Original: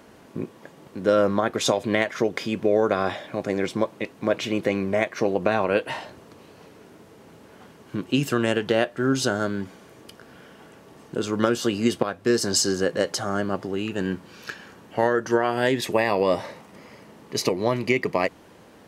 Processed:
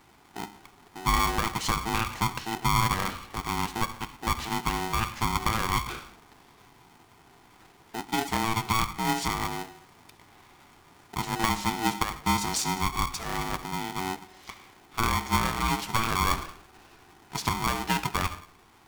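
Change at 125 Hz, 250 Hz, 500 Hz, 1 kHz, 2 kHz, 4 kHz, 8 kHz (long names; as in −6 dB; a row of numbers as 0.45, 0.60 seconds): 0.0, −8.0, −17.0, +2.5, −3.0, −1.0, −2.0 decibels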